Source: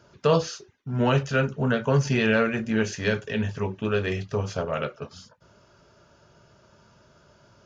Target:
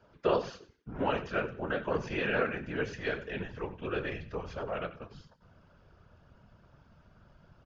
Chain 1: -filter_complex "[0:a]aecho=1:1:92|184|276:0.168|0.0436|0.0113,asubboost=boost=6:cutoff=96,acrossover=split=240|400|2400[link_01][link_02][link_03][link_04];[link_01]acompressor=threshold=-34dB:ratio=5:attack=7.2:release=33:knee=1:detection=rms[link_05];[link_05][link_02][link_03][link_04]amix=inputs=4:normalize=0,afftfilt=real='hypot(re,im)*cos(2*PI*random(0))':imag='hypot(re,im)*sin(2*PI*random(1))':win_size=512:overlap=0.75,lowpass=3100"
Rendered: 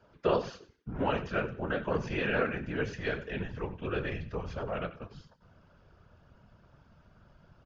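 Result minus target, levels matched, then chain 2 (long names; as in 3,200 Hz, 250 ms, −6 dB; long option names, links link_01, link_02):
downward compressor: peak gain reduction −5.5 dB
-filter_complex "[0:a]aecho=1:1:92|184|276:0.168|0.0436|0.0113,asubboost=boost=6:cutoff=96,acrossover=split=240|400|2400[link_01][link_02][link_03][link_04];[link_01]acompressor=threshold=-41dB:ratio=5:attack=7.2:release=33:knee=1:detection=rms[link_05];[link_05][link_02][link_03][link_04]amix=inputs=4:normalize=0,afftfilt=real='hypot(re,im)*cos(2*PI*random(0))':imag='hypot(re,im)*sin(2*PI*random(1))':win_size=512:overlap=0.75,lowpass=3100"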